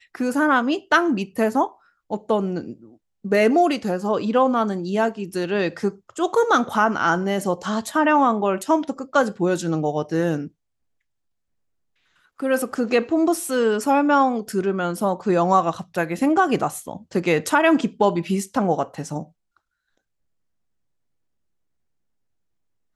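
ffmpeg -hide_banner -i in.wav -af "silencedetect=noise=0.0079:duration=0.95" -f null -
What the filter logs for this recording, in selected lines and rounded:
silence_start: 10.48
silence_end: 12.40 | silence_duration: 1.92
silence_start: 19.26
silence_end: 22.95 | silence_duration: 3.69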